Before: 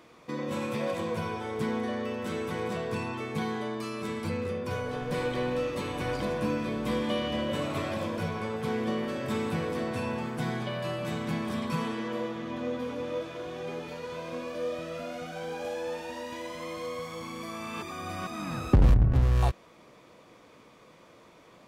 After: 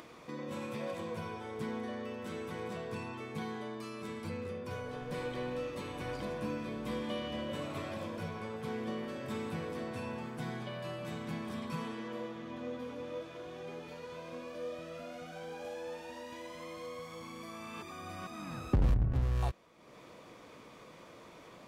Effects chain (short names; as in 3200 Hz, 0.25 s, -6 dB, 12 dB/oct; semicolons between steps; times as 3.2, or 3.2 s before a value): upward compressor, threshold -35 dBFS; gain -8 dB